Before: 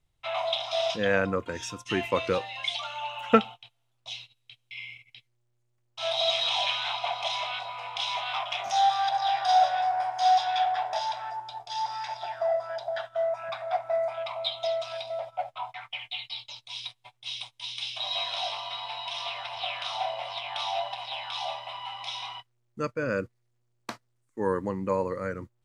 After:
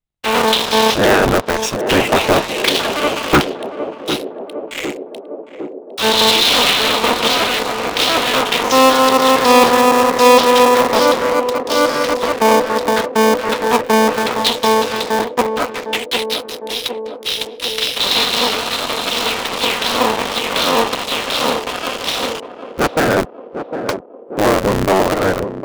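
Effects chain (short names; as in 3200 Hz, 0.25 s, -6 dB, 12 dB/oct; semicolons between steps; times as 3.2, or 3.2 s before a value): cycle switcher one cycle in 3, inverted; sample leveller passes 5; on a send: narrowing echo 0.756 s, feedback 78%, band-pass 410 Hz, level -7 dB; on the sum: gain -2 dB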